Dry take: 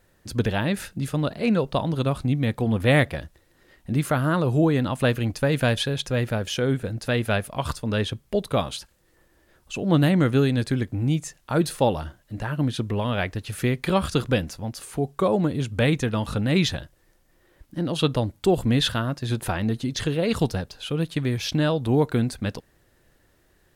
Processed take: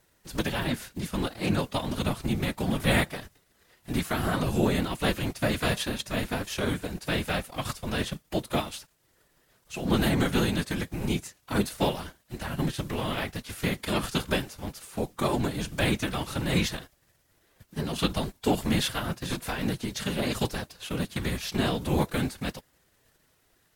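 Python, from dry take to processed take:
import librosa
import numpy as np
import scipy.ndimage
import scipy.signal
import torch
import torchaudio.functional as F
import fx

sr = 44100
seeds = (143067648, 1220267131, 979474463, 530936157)

y = fx.envelope_flatten(x, sr, power=0.6)
y = fx.whisperise(y, sr, seeds[0])
y = fx.pitch_keep_formants(y, sr, semitones=1.0)
y = y * 10.0 ** (-5.0 / 20.0)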